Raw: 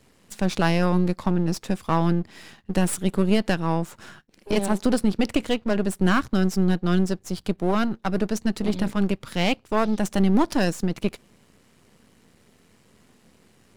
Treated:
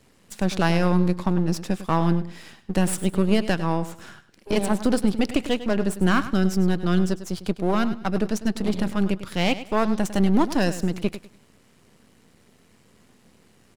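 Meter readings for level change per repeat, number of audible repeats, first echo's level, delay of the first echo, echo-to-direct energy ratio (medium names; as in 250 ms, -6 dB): -12.0 dB, 2, -13.5 dB, 101 ms, -13.0 dB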